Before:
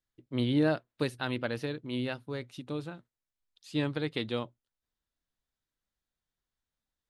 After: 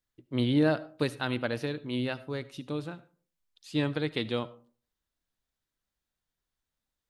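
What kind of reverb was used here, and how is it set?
comb and all-pass reverb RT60 0.43 s, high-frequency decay 0.45×, pre-delay 35 ms, DRR 17.5 dB
level +2 dB

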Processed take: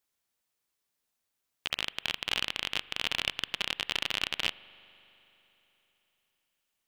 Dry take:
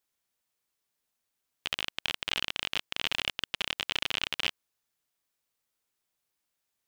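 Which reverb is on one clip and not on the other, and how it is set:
spring reverb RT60 3.6 s, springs 41 ms, chirp 45 ms, DRR 18.5 dB

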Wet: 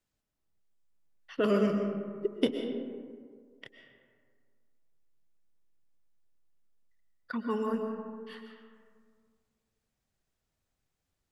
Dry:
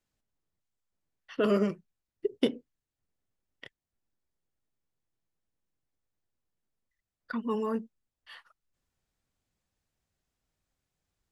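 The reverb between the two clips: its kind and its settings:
comb and all-pass reverb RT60 1.9 s, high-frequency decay 0.4×, pre-delay 85 ms, DRR 4.5 dB
level −1 dB

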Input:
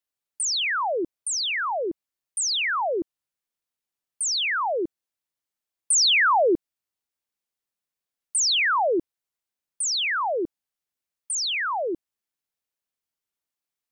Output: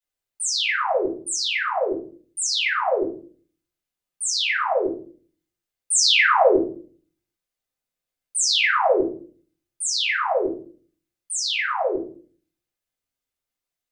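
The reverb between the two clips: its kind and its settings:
rectangular room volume 34 cubic metres, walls mixed, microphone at 2 metres
level −9 dB

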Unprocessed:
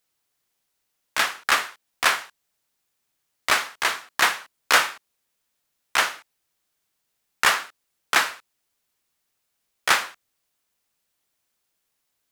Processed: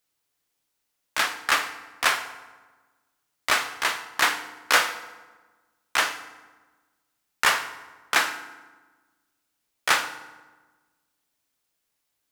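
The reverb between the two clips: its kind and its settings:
feedback delay network reverb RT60 1.3 s, low-frequency decay 1.25×, high-frequency decay 0.65×, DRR 9 dB
level −2 dB

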